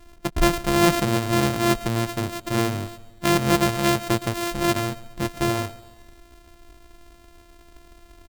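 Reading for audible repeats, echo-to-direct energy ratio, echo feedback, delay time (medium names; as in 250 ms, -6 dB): 3, -18.0 dB, 49%, 138 ms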